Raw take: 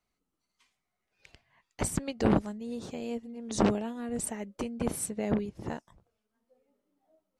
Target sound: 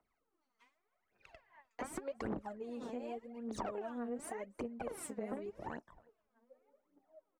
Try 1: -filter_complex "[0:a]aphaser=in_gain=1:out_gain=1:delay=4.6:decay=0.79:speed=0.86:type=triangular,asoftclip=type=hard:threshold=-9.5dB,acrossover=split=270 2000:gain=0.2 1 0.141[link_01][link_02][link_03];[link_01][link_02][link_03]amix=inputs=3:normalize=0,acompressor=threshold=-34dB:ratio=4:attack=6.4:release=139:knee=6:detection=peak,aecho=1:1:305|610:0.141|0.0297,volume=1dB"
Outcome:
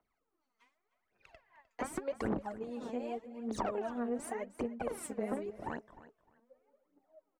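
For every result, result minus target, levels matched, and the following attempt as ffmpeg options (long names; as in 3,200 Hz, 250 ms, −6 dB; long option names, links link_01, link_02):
echo-to-direct +11.5 dB; downward compressor: peak gain reduction −5 dB
-filter_complex "[0:a]aphaser=in_gain=1:out_gain=1:delay=4.6:decay=0.79:speed=0.86:type=triangular,asoftclip=type=hard:threshold=-9.5dB,acrossover=split=270 2000:gain=0.2 1 0.141[link_01][link_02][link_03];[link_01][link_02][link_03]amix=inputs=3:normalize=0,acompressor=threshold=-34dB:ratio=4:attack=6.4:release=139:knee=6:detection=peak,aecho=1:1:305:0.0376,volume=1dB"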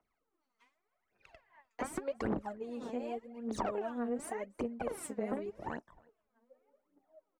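downward compressor: peak gain reduction −5 dB
-filter_complex "[0:a]aphaser=in_gain=1:out_gain=1:delay=4.6:decay=0.79:speed=0.86:type=triangular,asoftclip=type=hard:threshold=-9.5dB,acrossover=split=270 2000:gain=0.2 1 0.141[link_01][link_02][link_03];[link_01][link_02][link_03]amix=inputs=3:normalize=0,acompressor=threshold=-41dB:ratio=4:attack=6.4:release=139:knee=6:detection=peak,aecho=1:1:305:0.0376,volume=1dB"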